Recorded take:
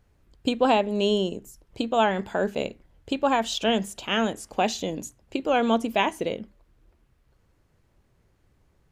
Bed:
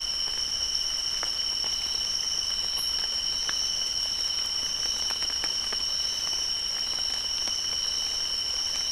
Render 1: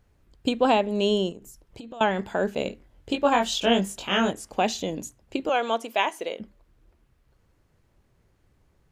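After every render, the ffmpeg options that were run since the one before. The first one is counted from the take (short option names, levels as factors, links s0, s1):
-filter_complex "[0:a]asettb=1/sr,asplit=3[s0][s1][s2];[s0]atrim=end=1.314[s3];[s1]atrim=start=1.31:end=2.01,asetpts=PTS-STARTPTS,afade=t=in:d=0.004:c=qsin,afade=t=out:st=0.696:d=0.004:c=qsin,acompressor=threshold=0.0158:ratio=12:attack=3.2:release=140:knee=1:detection=peak[s4];[s2]atrim=start=2.006[s5];[s3][s4]acrossfade=d=0.004:c1=hsin:c2=qsin[s6];[s6][s5]acrossfade=d=0.004:c1=qsin:c2=hsin,asettb=1/sr,asplit=3[s7][s8][s9];[s7]atrim=end=2.644[s10];[s8]atrim=start=2.64:end=4.31,asetpts=PTS-STARTPTS,afade=t=in:d=0.004:c=qsin,afade=t=out:st=1.666:d=0.004:c=qsin,asplit=2[s11][s12];[s12]adelay=21,volume=0.708[s13];[s11][s13]amix=inputs=2:normalize=0,atrim=end_sample=73647[s14];[s9]atrim=start=4.306[s15];[s10][s14]acrossfade=d=0.004:c1=hsin:c2=qsin[s16];[s16][s15]acrossfade=d=0.004:c1=qsin:c2=hsin,asettb=1/sr,asplit=3[s17][s18][s19];[s17]atrim=end=5.494[s20];[s18]atrim=start=5.49:end=6.4,asetpts=PTS-STARTPTS,afade=t=in:d=0.004:c=qsin,afade=t=out:st=0.906:d=0.004:c=qsin,highpass=490[s21];[s19]atrim=start=6.396[s22];[s20][s21]acrossfade=d=0.004:c1=hsin:c2=qsin[s23];[s23][s22]acrossfade=d=0.004:c1=qsin:c2=hsin"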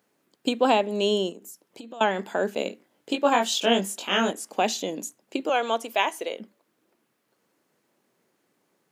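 -af "highpass=f=210:w=0.5412,highpass=f=210:w=1.3066,highshelf=f=7400:g=7.5"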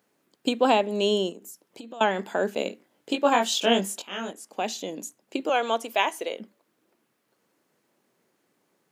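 -filter_complex "[0:a]asplit=2[s0][s1];[s0]atrim=end=4.02,asetpts=PTS-STARTPTS,afade=t=out:st=4.016:d=0.004:c=hsin:silence=0.223872[s2];[s1]atrim=start=4.02,asetpts=PTS-STARTPTS,afade=t=in:d=1.5:silence=0.223872[s3];[s2][s3]concat=n=2:v=0:a=1"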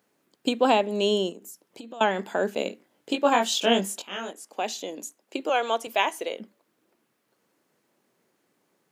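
-filter_complex "[0:a]asettb=1/sr,asplit=3[s0][s1][s2];[s0]atrim=end=4.164[s3];[s1]atrim=start=4.16:end=5.87,asetpts=PTS-STARTPTS,afade=t=in:d=0.004:c=qsin,afade=t=out:st=1.706:d=0.004:c=qsin,highpass=280[s4];[s2]atrim=start=5.866[s5];[s3][s4]acrossfade=d=0.004:c1=hsin:c2=qsin[s6];[s6][s5]acrossfade=d=0.004:c1=qsin:c2=hsin"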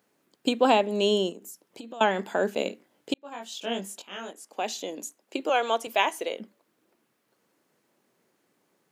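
-filter_complex "[0:a]asplit=2[s0][s1];[s0]atrim=end=3.14,asetpts=PTS-STARTPTS,afade=t=out:st=3.136:d=0.004:c=hsin[s2];[s1]atrim=start=3.14,asetpts=PTS-STARTPTS,afade=t=in:d=1.72[s3];[s2][s3]concat=n=2:v=0:a=1"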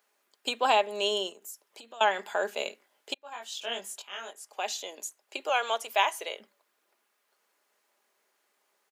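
-af "highpass=700,aecho=1:1:4.9:0.33"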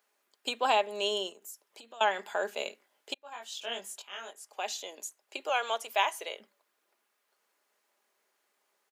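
-af "volume=0.75"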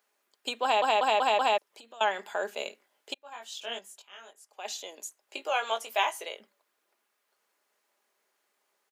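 -filter_complex "[0:a]asettb=1/sr,asplit=3[s0][s1][s2];[s0]atrim=end=5.214[s3];[s1]atrim=start=5.21:end=6.25,asetpts=PTS-STARTPTS,afade=t=in:d=0.004:c=qsin,afade=t=out:st=1.036:d=0.004:c=qsin,asplit=2[s4][s5];[s5]adelay=18,volume=0.473[s6];[s4][s6]amix=inputs=2:normalize=0,atrim=end_sample=45864[s7];[s2]atrim=start=6.246[s8];[s3][s7]acrossfade=d=0.004:c1=hsin:c2=qsin[s9];[s9][s8]acrossfade=d=0.004:c1=qsin:c2=hsin,asplit=8[s10][s11][s12][s13][s14][s15][s16][s17];[s10]atrim=end=0.822[s18];[s11]atrim=start=0.628:end=0.822[s19];[s12]atrim=start=0.628:end=0.822[s20];[s13]atrim=start=0.628:end=0.822[s21];[s14]atrim=start=0.628:end=0.822[s22];[s15]atrim=start=1.578:end=3.792[s23];[s16]atrim=start=3.788:end=4.652,asetpts=PTS-STARTPTS,volume=0.473[s24];[s17]atrim=start=4.648[s25];[s18][s19]acrossfade=d=0.004:c1=hsin:c2=hsin[s26];[s26][s20]acrossfade=d=0.004:c1=hsin:c2=hsin[s27];[s27][s21]acrossfade=d=0.004:c1=hsin:c2=hsin[s28];[s28][s22]acrossfade=d=0.004:c1=hsin:c2=hsin[s29];[s29][s23]acrossfade=d=0.004:c1=hsin:c2=hsin[s30];[s30][s24]acrossfade=d=0.004:c1=hsin:c2=hsin[s31];[s31][s25]acrossfade=d=0.004:c1=hsin:c2=hsin"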